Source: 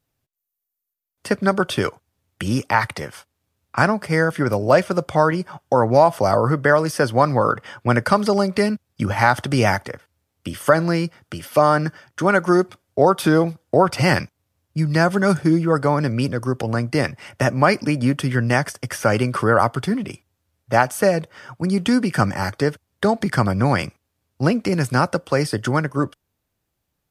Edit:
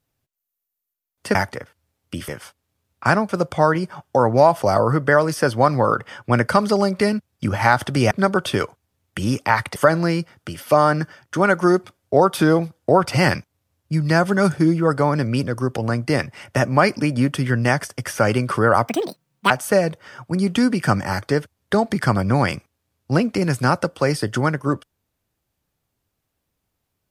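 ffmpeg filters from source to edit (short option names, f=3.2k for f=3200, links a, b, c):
-filter_complex "[0:a]asplit=8[a][b][c][d][e][f][g][h];[a]atrim=end=1.352[i];[b]atrim=start=9.678:end=10.612[j];[c]atrim=start=2.998:end=4.012[k];[d]atrim=start=4.858:end=9.682[l];[e]atrim=start=1.348:end=3.002[m];[f]atrim=start=10.608:end=19.734[n];[g]atrim=start=19.73:end=20.81,asetpts=PTS-STARTPTS,asetrate=76293,aresample=44100[o];[h]atrim=start=20.806[p];[i][j]acrossfade=d=0.004:c1=hsin:c2=hsin[q];[q][k]acrossfade=d=0.004:c1=hsin:c2=hsin[r];[r][l]acrossfade=d=0.004:c1=hsin:c2=hsin[s];[s][m]acrossfade=d=0.004:c1=hsin:c2=hsin[t];[t][n]acrossfade=d=0.004:c1=hsin:c2=hsin[u];[u][o]acrossfade=d=0.004:c1=hsin:c2=hsin[v];[v][p]acrossfade=d=0.004:c1=hsin:c2=hsin"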